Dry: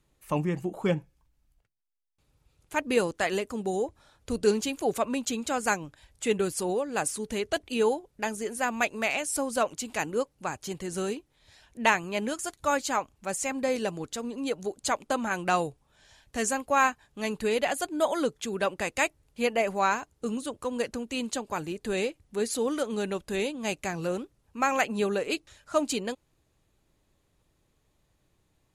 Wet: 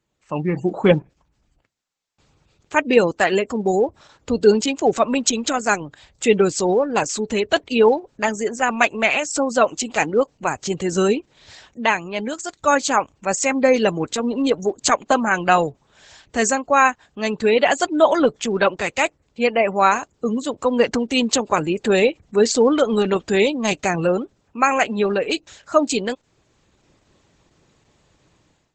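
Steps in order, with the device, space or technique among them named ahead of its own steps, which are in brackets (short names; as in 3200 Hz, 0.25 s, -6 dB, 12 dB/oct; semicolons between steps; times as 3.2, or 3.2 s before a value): noise-suppressed video call (HPF 120 Hz 6 dB/oct; spectral gate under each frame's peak -30 dB strong; AGC gain up to 16.5 dB; gain -1 dB; Opus 12 kbps 48000 Hz)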